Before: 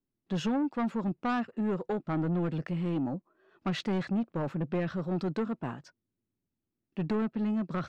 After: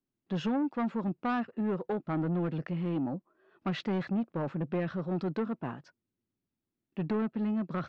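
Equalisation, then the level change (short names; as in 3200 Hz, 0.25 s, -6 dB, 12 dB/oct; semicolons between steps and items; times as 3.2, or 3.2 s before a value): air absorption 130 m; low shelf 66 Hz -8.5 dB; 0.0 dB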